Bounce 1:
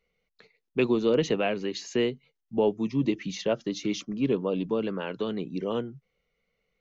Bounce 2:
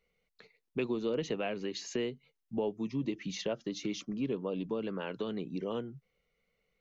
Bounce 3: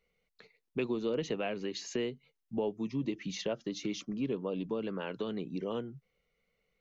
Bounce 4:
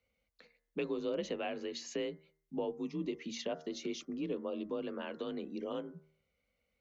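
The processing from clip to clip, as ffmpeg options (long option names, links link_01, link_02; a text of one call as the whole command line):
ffmpeg -i in.wav -af "acompressor=threshold=-34dB:ratio=2,volume=-1.5dB" out.wav
ffmpeg -i in.wav -af anull out.wav
ffmpeg -i in.wav -af "afreqshift=38,bandreject=frequency=77.94:width_type=h:width=4,bandreject=frequency=155.88:width_type=h:width=4,bandreject=frequency=233.82:width_type=h:width=4,bandreject=frequency=311.76:width_type=h:width=4,bandreject=frequency=389.7:width_type=h:width=4,bandreject=frequency=467.64:width_type=h:width=4,bandreject=frequency=545.58:width_type=h:width=4,bandreject=frequency=623.52:width_type=h:width=4,bandreject=frequency=701.46:width_type=h:width=4,bandreject=frequency=779.4:width_type=h:width=4,bandreject=frequency=857.34:width_type=h:width=4,bandreject=frequency=935.28:width_type=h:width=4,bandreject=frequency=1013.22:width_type=h:width=4,bandreject=frequency=1091.16:width_type=h:width=4,bandreject=frequency=1169.1:width_type=h:width=4,bandreject=frequency=1247.04:width_type=h:width=4,bandreject=frequency=1324.98:width_type=h:width=4,bandreject=frequency=1402.92:width_type=h:width=4,bandreject=frequency=1480.86:width_type=h:width=4,bandreject=frequency=1558.8:width_type=h:width=4,bandreject=frequency=1636.74:width_type=h:width=4,bandreject=frequency=1714.68:width_type=h:width=4,bandreject=frequency=1792.62:width_type=h:width=4,bandreject=frequency=1870.56:width_type=h:width=4,bandreject=frequency=1948.5:width_type=h:width=4,bandreject=frequency=2026.44:width_type=h:width=4,bandreject=frequency=2104.38:width_type=h:width=4,volume=-3dB" out.wav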